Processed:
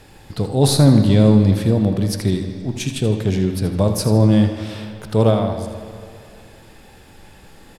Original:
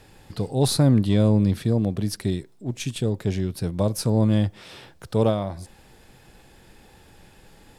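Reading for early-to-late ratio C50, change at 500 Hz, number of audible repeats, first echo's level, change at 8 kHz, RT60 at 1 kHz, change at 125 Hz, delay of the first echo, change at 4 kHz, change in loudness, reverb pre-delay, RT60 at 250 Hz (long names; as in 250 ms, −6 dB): 5.5 dB, +6.0 dB, 1, −11.0 dB, +5.5 dB, 2.5 s, +6.5 dB, 80 ms, +6.0 dB, +6.0 dB, 11 ms, 2.3 s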